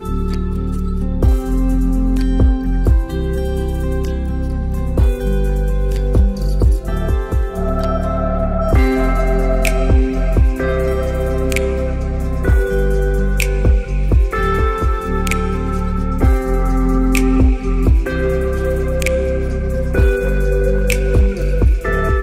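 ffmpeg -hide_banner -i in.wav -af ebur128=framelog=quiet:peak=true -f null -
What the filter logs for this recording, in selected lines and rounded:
Integrated loudness:
  I:         -17.5 LUFS
  Threshold: -27.5 LUFS
Loudness range:
  LRA:         1.8 LU
  Threshold: -37.5 LUFS
  LRA low:   -18.4 LUFS
  LRA high:  -16.6 LUFS
True peak:
  Peak:       -3.5 dBFS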